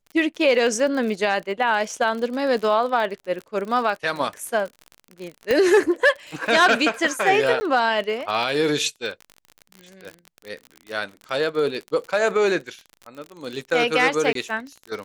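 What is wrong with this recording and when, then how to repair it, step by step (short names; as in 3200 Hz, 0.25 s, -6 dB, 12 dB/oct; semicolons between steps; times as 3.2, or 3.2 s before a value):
crackle 39/s -29 dBFS
5.51 pop -8 dBFS
7.6–7.61 gap 10 ms
14.33–14.35 gap 23 ms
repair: de-click; interpolate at 7.6, 10 ms; interpolate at 14.33, 23 ms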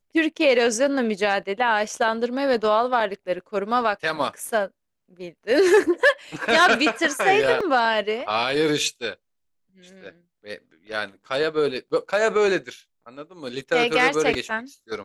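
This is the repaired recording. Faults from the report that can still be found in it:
none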